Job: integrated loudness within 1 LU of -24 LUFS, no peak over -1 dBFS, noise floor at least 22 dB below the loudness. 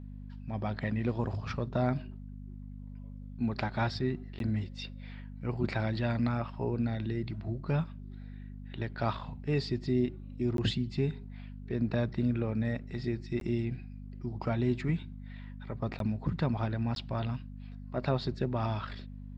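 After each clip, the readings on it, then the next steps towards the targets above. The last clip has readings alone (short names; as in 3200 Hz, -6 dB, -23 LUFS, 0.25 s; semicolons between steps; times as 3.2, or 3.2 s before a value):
dropouts 5; longest dropout 12 ms; hum 50 Hz; harmonics up to 250 Hz; hum level -41 dBFS; loudness -33.5 LUFS; peak -15.5 dBFS; loudness target -24.0 LUFS
-> interpolate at 4.39/10.57/13.4/15.99/16.95, 12 ms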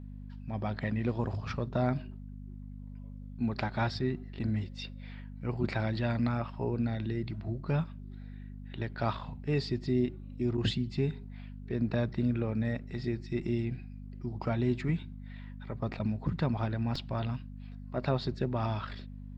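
dropouts 0; hum 50 Hz; harmonics up to 250 Hz; hum level -41 dBFS
-> de-hum 50 Hz, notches 5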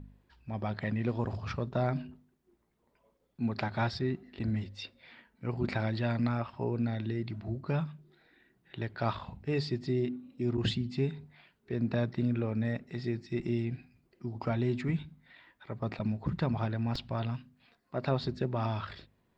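hum none; loudness -34.0 LUFS; peak -16.0 dBFS; loudness target -24.0 LUFS
-> gain +10 dB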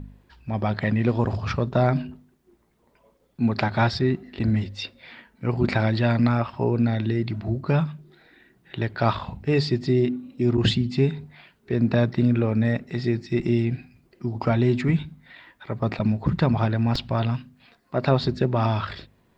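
loudness -24.0 LUFS; peak -6.0 dBFS; noise floor -64 dBFS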